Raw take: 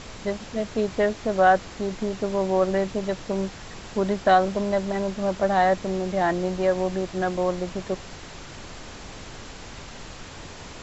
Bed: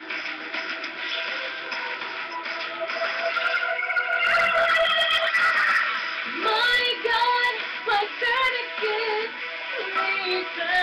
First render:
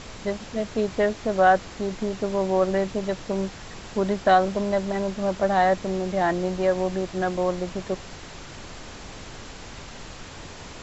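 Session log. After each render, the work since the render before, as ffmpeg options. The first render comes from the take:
-af anull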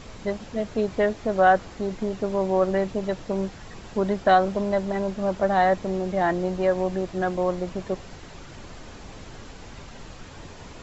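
-af "afftdn=nr=6:nf=-41"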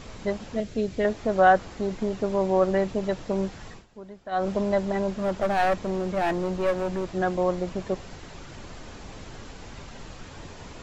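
-filter_complex "[0:a]asettb=1/sr,asplit=3[a][b][c];[a]atrim=end=0.604[d];[b]atrim=start=0.6:end=1.05,asetpts=PTS-STARTPTS,afade=t=in:d=0.004:c=qsin,afade=t=out:st=0.446:d=0.004:c=qsin,equalizer=f=1k:t=o:w=1.4:g=-12[e];[c]atrim=start=1.046[f];[d][e]acrossfade=d=0.004:c1=hsin:c2=qsin[g];[g][f]acrossfade=d=0.004:c1=qsin:c2=hsin,asettb=1/sr,asplit=3[h][i][j];[h]atrim=end=5.134[k];[i]atrim=start=5.13:end=7.11,asetpts=PTS-STARTPTS,afade=t=in:d=0.004:c=qsin,afade=t=out:st=1.976:d=0.004:c=qsin,aeval=exprs='clip(val(0),-1,0.0631)':c=same[l];[j]atrim=start=7.106[m];[k][l]acrossfade=d=0.004:c1=hsin:c2=qsin[n];[n][m]acrossfade=d=0.004:c1=qsin:c2=hsin,asplit=3[o][p][q];[o]atrim=end=3.86,asetpts=PTS-STARTPTS,afade=t=out:st=3.68:d=0.18:silence=0.11885[r];[p]atrim=start=3.86:end=4.31,asetpts=PTS-STARTPTS,volume=-18.5dB[s];[q]atrim=start=4.31,asetpts=PTS-STARTPTS,afade=t=in:d=0.18:silence=0.11885[t];[r][s][t]concat=n=3:v=0:a=1"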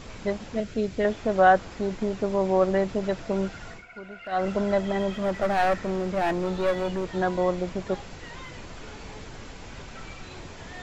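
-filter_complex "[1:a]volume=-22.5dB[a];[0:a][a]amix=inputs=2:normalize=0"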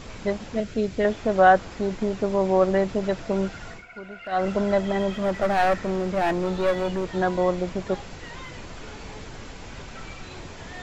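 -af "volume=2dB"

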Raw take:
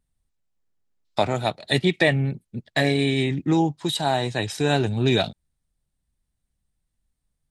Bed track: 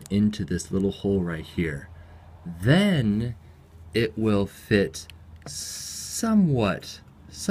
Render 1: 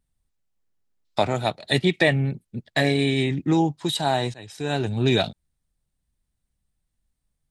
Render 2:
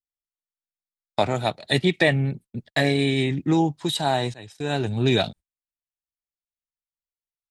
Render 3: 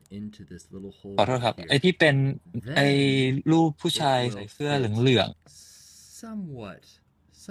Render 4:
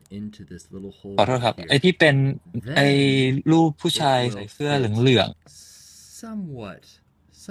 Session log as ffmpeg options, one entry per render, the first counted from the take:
-filter_complex "[0:a]asplit=2[a][b];[a]atrim=end=4.34,asetpts=PTS-STARTPTS,afade=t=out:st=4.336:d=0.004:c=hsin:silence=0.0749894[c];[b]atrim=start=4.34,asetpts=PTS-STARTPTS,afade=t=in:d=0.69:silence=0.0749894[d];[c][d]concat=n=2:v=0:a=1"
-af "agate=range=-34dB:threshold=-41dB:ratio=16:detection=peak"
-filter_complex "[1:a]volume=-15.5dB[a];[0:a][a]amix=inputs=2:normalize=0"
-af "volume=3.5dB"

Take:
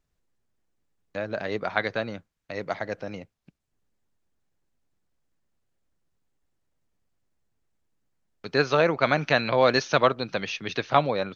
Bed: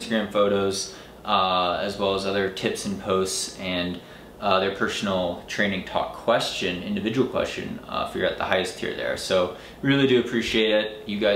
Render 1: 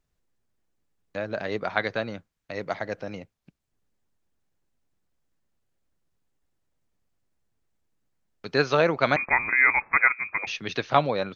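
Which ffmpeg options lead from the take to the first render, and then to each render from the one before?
-filter_complex "[0:a]asettb=1/sr,asplit=3[a][b][c];[a]atrim=end=9.164[d];[b]atrim=start=9.16:end=10.47,asetpts=PTS-STARTPTS,afade=t=in:d=0.004:c=qsin,afade=t=out:st=1.306:d=0.004:c=qsin,lowpass=f=2.2k:t=q:w=0.5098,lowpass=f=2.2k:t=q:w=0.6013,lowpass=f=2.2k:t=q:w=0.9,lowpass=f=2.2k:t=q:w=2.563,afreqshift=-2600[e];[c]atrim=start=10.466[f];[d][e]acrossfade=d=0.004:c1=hsin:c2=qsin[g];[g][f]acrossfade=d=0.004:c1=qsin:c2=hsin"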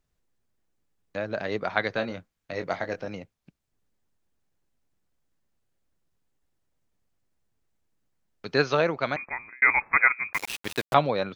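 -filter_complex "[0:a]asettb=1/sr,asplit=3[a][b][c];[a]atrim=end=1.934[d];[b]atrim=start=1.93:end=3.07,asetpts=PTS-STARTPTS,afade=t=in:d=0.004:c=qsin,afade=t=out:st=1.136:d=0.004:c=qsin,asplit=2[e][f];[f]adelay=22,volume=-7dB[g];[e][g]amix=inputs=2:normalize=0,atrim=end_sample=50274[h];[c]atrim=start=3.066[i];[d][h]acrossfade=d=0.004:c1=hsin:c2=qsin[j];[j][i]acrossfade=d=0.004:c1=qsin:c2=hsin,asettb=1/sr,asplit=3[k][l][m];[k]atrim=end=10.334[n];[l]atrim=start=10.33:end=10.94,asetpts=PTS-STARTPTS,afade=t=in:d=0.004:c=qsin,afade=t=out:st=0.606:d=0.004:c=qsin,aeval=exprs='val(0)*gte(abs(val(0)),0.0335)':c=same[o];[m]atrim=start=10.936[p];[n][o]acrossfade=d=0.004:c1=hsin:c2=qsin[q];[q][p]acrossfade=d=0.004:c1=qsin:c2=hsin,asplit=2[r][s];[r]atrim=end=9.62,asetpts=PTS-STARTPTS,afade=t=out:st=8.56:d=1.06[t];[s]atrim=start=9.62,asetpts=PTS-STARTPTS,afade=t=in:d=0.004:c=hsin[u];[t][u]concat=n=2:v=0:a=1"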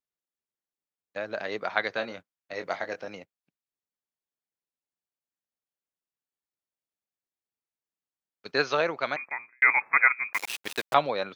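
-af "agate=range=-14dB:threshold=-39dB:ratio=16:detection=peak,highpass=f=520:p=1"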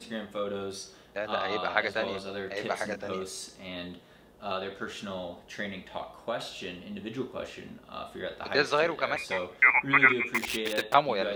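-filter_complex "[1:a]volume=-12.5dB[a];[0:a][a]amix=inputs=2:normalize=0"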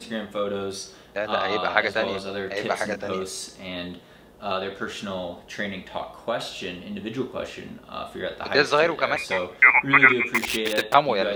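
-af "volume=6dB,alimiter=limit=-2dB:level=0:latency=1"

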